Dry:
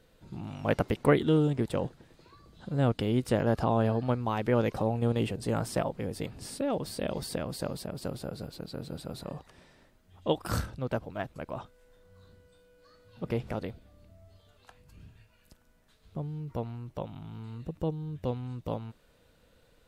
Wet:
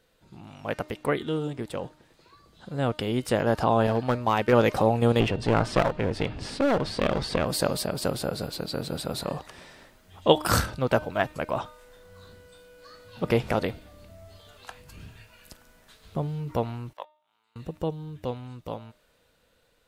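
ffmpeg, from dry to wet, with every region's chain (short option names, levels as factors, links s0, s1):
-filter_complex "[0:a]asettb=1/sr,asplit=3[s0][s1][s2];[s0]atrim=end=3.874[s3];[s1]atrim=start=3.87:end=4.53,asetpts=PTS-STARTPTS,afade=t=in:d=0.004:c=qsin,afade=t=out:st=0.656:d=0.004:c=qsin,asoftclip=type=hard:threshold=0.0891,agate=range=0.0224:threshold=0.0282:ratio=3:release=100:detection=peak[s4];[s2]atrim=start=4.526[s5];[s3][s4]acrossfade=d=0.004:c1=hsin:c2=qsin[s6];[s6][s5]acrossfade=d=0.004:c1=qsin:c2=hsin,asettb=1/sr,asplit=3[s7][s8][s9];[s7]atrim=end=5.204[s10];[s8]atrim=start=5.2:end=7.45,asetpts=PTS-STARTPTS,afade=t=in:d=0.004:c=qsin,afade=t=out:st=2.246:d=0.004:c=qsin,lowpass=3700,lowshelf=f=75:g=9.5,aeval=exprs='clip(val(0),-1,0.0178)':c=same[s11];[s9]atrim=start=7.446[s12];[s10][s11]acrossfade=d=0.004:c1=hsin:c2=qsin[s13];[s13][s12]acrossfade=d=0.004:c1=qsin:c2=hsin,asettb=1/sr,asplit=3[s14][s15][s16];[s14]atrim=end=16.934[s17];[s15]atrim=start=16.93:end=17.56,asetpts=PTS-STARTPTS,afade=t=in:d=0.004:c=qsin,afade=t=out:st=0.626:d=0.004:c=qsin,agate=range=0.00355:threshold=0.02:ratio=16:release=100:detection=peak,highpass=890,acompressor=mode=upward:threshold=0.00178:ratio=2.5:attack=3.2:release=140:knee=2.83:detection=peak[s18];[s16]atrim=start=17.556[s19];[s17][s18]acrossfade=d=0.004:c1=hsin:c2=qsin[s20];[s20][s19]acrossfade=d=0.004:c1=qsin:c2=hsin,lowshelf=f=410:g=-8,bandreject=f=305:t=h:w=4,bandreject=f=610:t=h:w=4,bandreject=f=915:t=h:w=4,bandreject=f=1220:t=h:w=4,bandreject=f=1525:t=h:w=4,bandreject=f=1830:t=h:w=4,bandreject=f=2135:t=h:w=4,bandreject=f=2440:t=h:w=4,bandreject=f=2745:t=h:w=4,bandreject=f=3050:t=h:w=4,bandreject=f=3355:t=h:w=4,bandreject=f=3660:t=h:w=4,bandreject=f=3965:t=h:w=4,bandreject=f=4270:t=h:w=4,bandreject=f=4575:t=h:w=4,bandreject=f=4880:t=h:w=4,dynaudnorm=f=670:g=11:m=5.62"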